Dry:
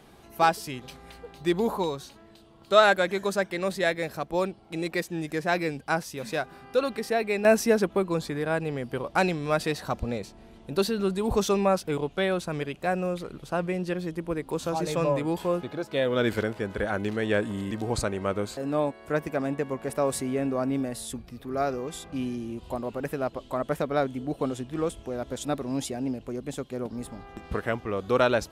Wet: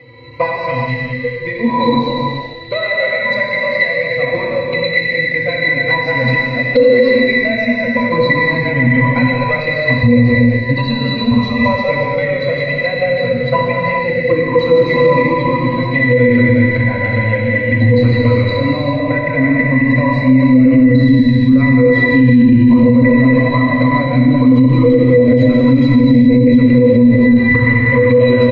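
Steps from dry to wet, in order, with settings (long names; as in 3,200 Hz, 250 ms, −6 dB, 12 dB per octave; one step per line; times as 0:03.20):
delay that plays each chunk backwards 118 ms, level −6 dB
high-pass filter 170 Hz 6 dB per octave
mains-hum notches 50/100/150/200/250/300/350/400/450/500 Hz
in parallel at +2 dB: speech leveller
on the sum: high shelf with overshoot 1,600 Hz +8 dB, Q 3
downward compressor 12 to 1, threshold −20 dBFS, peak gain reduction 15.5 dB
resonances in every octave B, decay 0.18 s
flanger swept by the level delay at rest 2.4 ms, full sweep at −27.5 dBFS
high-frequency loss of the air 250 metres
on a send: echo with shifted repeats 155 ms, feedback 53%, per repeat −120 Hz, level −23 dB
on the sum: reverb whose tail is shaped and stops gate 450 ms flat, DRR −1.5 dB
boost into a limiter +30 dB
level −1 dB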